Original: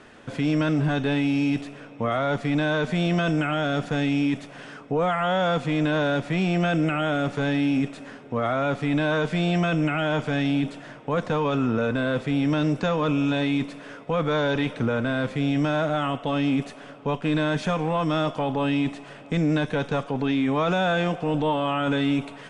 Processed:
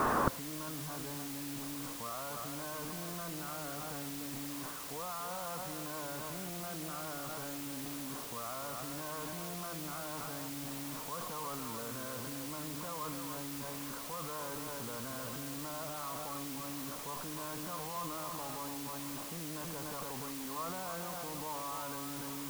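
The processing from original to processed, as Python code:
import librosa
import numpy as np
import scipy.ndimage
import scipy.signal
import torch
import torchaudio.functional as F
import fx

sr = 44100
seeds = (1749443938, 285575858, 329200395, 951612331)

p1 = fx.lowpass_res(x, sr, hz=1100.0, q=5.4)
p2 = p1 + 10.0 ** (-7.5 / 20.0) * np.pad(p1, (int(291 * sr / 1000.0), 0))[:len(p1)]
p3 = fx.over_compress(p2, sr, threshold_db=-29.0, ratio=-1.0)
p4 = p2 + F.gain(torch.from_numpy(p3), 2.5).numpy()
p5 = fx.transient(p4, sr, attack_db=0, sustain_db=8)
p6 = fx.gate_flip(p5, sr, shuts_db=-20.0, range_db=-29)
p7 = fx.quant_dither(p6, sr, seeds[0], bits=8, dither='triangular')
y = F.gain(torch.from_numpy(p7), 2.5).numpy()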